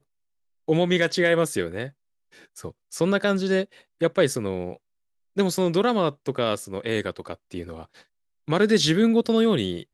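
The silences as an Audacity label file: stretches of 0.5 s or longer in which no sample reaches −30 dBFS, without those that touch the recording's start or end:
1.870000	2.580000	silence
4.720000	5.370000	silence
7.830000	8.480000	silence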